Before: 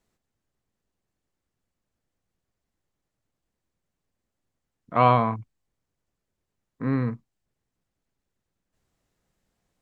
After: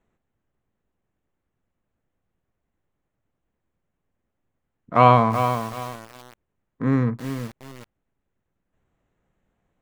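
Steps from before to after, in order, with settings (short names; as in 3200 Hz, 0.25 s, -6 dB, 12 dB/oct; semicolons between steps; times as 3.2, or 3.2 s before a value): Wiener smoothing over 9 samples; lo-fi delay 0.378 s, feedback 35%, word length 6-bit, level -8 dB; gain +4.5 dB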